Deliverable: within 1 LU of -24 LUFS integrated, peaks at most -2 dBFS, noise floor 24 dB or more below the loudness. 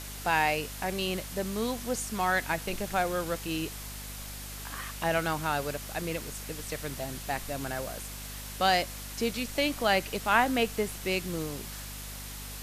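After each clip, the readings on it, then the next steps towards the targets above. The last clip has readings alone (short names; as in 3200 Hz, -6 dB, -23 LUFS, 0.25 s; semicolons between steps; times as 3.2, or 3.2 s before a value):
hum 50 Hz; harmonics up to 250 Hz; hum level -41 dBFS; noise floor -41 dBFS; noise floor target -55 dBFS; loudness -31.0 LUFS; peak -9.5 dBFS; loudness target -24.0 LUFS
-> notches 50/100/150/200/250 Hz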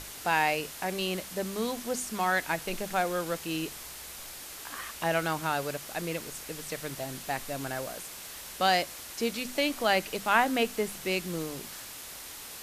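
hum none; noise floor -44 dBFS; noise floor target -55 dBFS
-> denoiser 11 dB, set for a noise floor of -44 dBFS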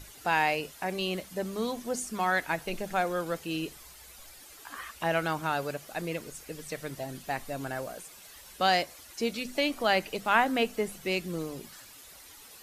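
noise floor -51 dBFS; noise floor target -55 dBFS
-> denoiser 6 dB, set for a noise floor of -51 dBFS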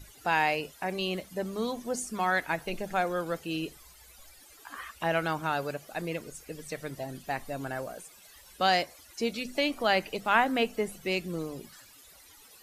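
noise floor -55 dBFS; loudness -31.0 LUFS; peak -9.5 dBFS; loudness target -24.0 LUFS
-> gain +7 dB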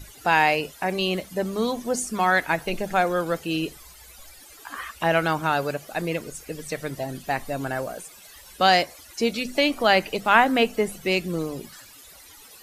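loudness -24.0 LUFS; peak -2.5 dBFS; noise floor -48 dBFS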